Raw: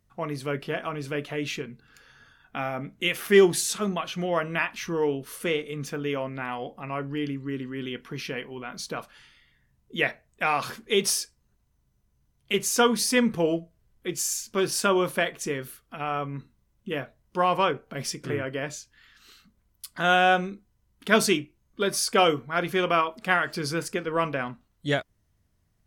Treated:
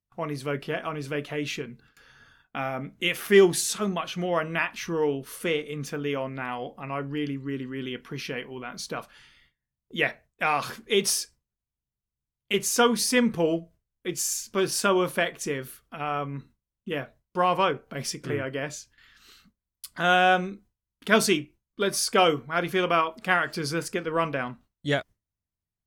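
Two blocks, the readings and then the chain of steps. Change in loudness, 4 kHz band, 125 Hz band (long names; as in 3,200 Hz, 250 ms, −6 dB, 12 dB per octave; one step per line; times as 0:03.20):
0.0 dB, 0.0 dB, 0.0 dB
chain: noise gate with hold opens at −47 dBFS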